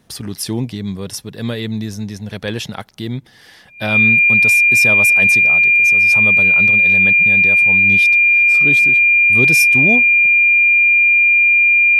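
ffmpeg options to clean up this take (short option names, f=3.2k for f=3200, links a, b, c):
-af "bandreject=f=2.4k:w=30"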